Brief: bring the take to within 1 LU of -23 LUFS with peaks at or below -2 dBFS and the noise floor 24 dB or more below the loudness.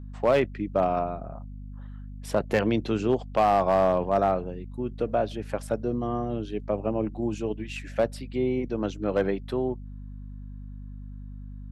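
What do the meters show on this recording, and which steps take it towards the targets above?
clipped samples 0.4%; clipping level -14.0 dBFS; hum 50 Hz; highest harmonic 250 Hz; hum level -37 dBFS; loudness -27.0 LUFS; peak level -14.0 dBFS; loudness target -23.0 LUFS
-> clip repair -14 dBFS; de-hum 50 Hz, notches 5; trim +4 dB

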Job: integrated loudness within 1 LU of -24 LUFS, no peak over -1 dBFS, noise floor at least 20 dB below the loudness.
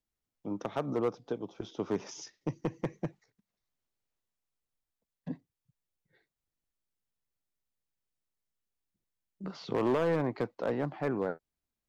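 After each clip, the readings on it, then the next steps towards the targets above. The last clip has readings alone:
clipped samples 0.7%; clipping level -23.0 dBFS; loudness -34.5 LUFS; peak level -23.0 dBFS; loudness target -24.0 LUFS
-> clip repair -23 dBFS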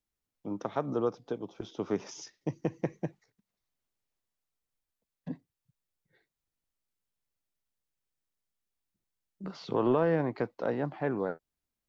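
clipped samples 0.0%; loudness -33.0 LUFS; peak level -15.5 dBFS; loudness target -24.0 LUFS
-> trim +9 dB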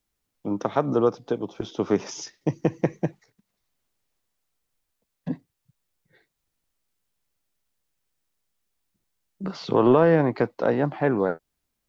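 loudness -24.5 LUFS; peak level -6.5 dBFS; noise floor -80 dBFS

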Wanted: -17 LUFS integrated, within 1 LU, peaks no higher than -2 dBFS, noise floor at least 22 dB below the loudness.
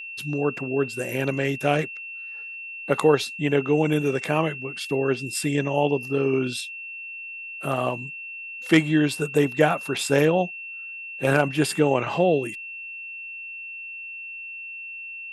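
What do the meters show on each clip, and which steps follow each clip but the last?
steady tone 2.7 kHz; tone level -34 dBFS; loudness -25.0 LUFS; peak level -3.5 dBFS; loudness target -17.0 LUFS
-> band-stop 2.7 kHz, Q 30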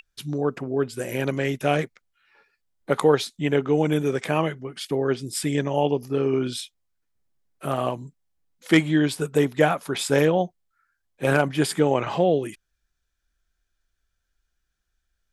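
steady tone not found; loudness -23.5 LUFS; peak level -4.0 dBFS; loudness target -17.0 LUFS
-> trim +6.5 dB; peak limiter -2 dBFS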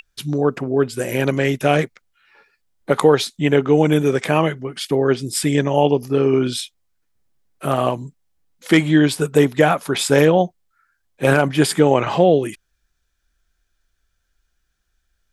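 loudness -17.5 LUFS; peak level -2.0 dBFS; noise floor -71 dBFS

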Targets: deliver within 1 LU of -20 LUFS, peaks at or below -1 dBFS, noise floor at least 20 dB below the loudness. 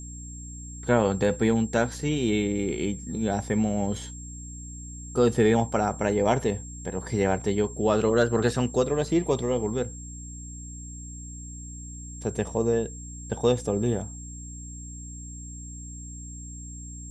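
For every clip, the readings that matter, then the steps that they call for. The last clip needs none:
hum 60 Hz; highest harmonic 300 Hz; hum level -38 dBFS; steady tone 7.5 kHz; tone level -42 dBFS; loudness -26.0 LUFS; peak level -8.5 dBFS; loudness target -20.0 LUFS
-> de-hum 60 Hz, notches 5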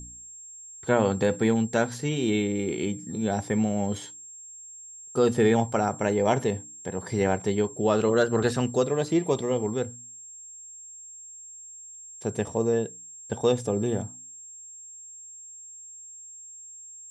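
hum not found; steady tone 7.5 kHz; tone level -42 dBFS
-> band-stop 7.5 kHz, Q 30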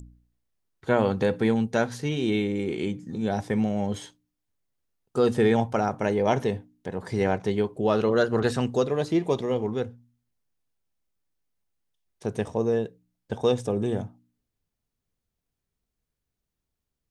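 steady tone not found; loudness -26.0 LUFS; peak level -8.5 dBFS; loudness target -20.0 LUFS
-> trim +6 dB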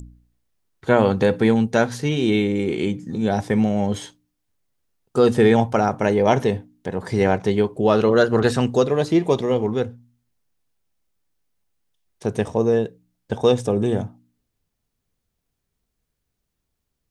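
loudness -20.0 LUFS; peak level -2.5 dBFS; noise floor -78 dBFS

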